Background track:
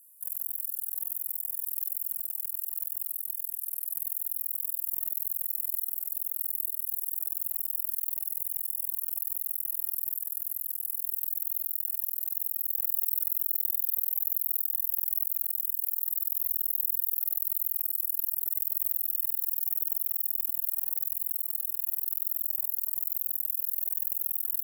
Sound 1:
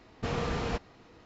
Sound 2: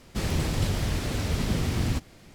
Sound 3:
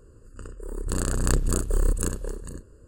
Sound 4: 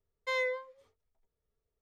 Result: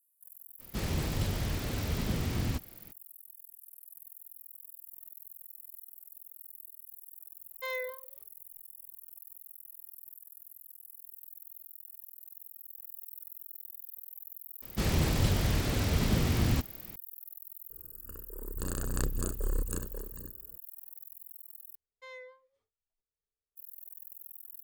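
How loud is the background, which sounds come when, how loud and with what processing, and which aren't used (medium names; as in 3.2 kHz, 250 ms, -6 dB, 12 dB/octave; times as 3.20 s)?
background track -17.5 dB
0.59 s: add 2 -5.5 dB, fades 0.02 s
7.35 s: add 4 -4.5 dB
14.62 s: add 2 -1 dB
17.70 s: add 3 -9 dB
21.75 s: replace with 4 -16 dB
not used: 1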